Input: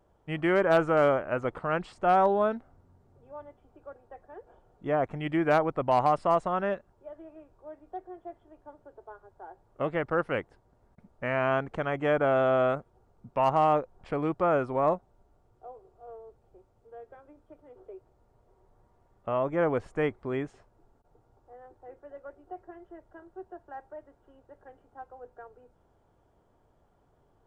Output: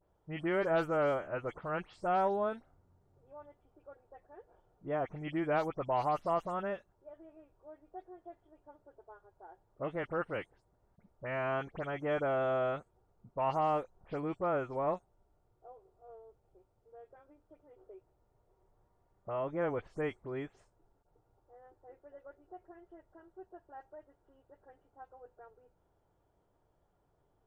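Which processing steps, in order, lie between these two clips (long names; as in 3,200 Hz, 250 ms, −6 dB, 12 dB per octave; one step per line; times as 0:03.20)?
every frequency bin delayed by itself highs late, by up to 101 ms
level −7.5 dB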